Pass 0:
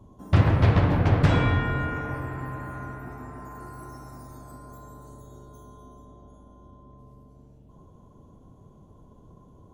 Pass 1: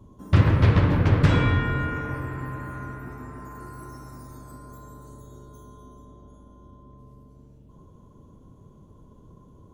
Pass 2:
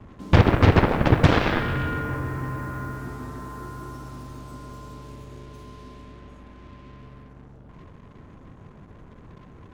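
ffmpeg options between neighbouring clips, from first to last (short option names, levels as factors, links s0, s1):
-af "equalizer=f=730:t=o:w=0.43:g=-8.5,volume=1.19"
-af "aemphasis=mode=reproduction:type=50fm,aeval=exprs='0.501*(cos(1*acos(clip(val(0)/0.501,-1,1)))-cos(1*PI/2))+0.178*(cos(7*acos(clip(val(0)/0.501,-1,1)))-cos(7*PI/2))':c=same,acrusher=bits=7:mix=0:aa=0.5"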